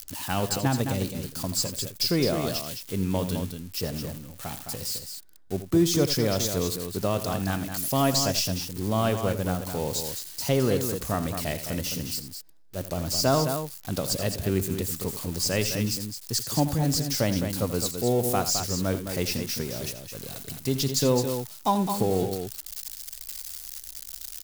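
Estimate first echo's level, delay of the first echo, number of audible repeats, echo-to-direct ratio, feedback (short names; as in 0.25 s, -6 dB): -12.5 dB, 83 ms, 2, -6.5 dB, no steady repeat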